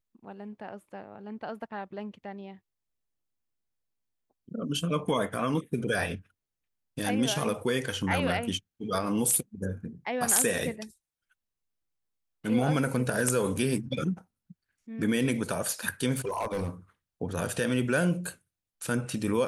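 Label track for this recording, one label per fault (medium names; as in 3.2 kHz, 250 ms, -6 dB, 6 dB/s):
16.160000	16.690000	clipped -26.5 dBFS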